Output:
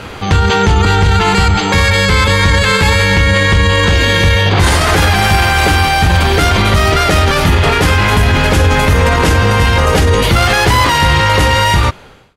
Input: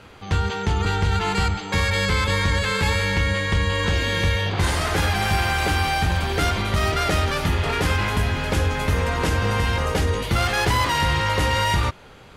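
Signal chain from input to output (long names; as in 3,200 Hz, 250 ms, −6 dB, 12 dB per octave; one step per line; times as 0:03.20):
fade-out on the ending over 1.02 s
boost into a limiter +19 dB
level −1 dB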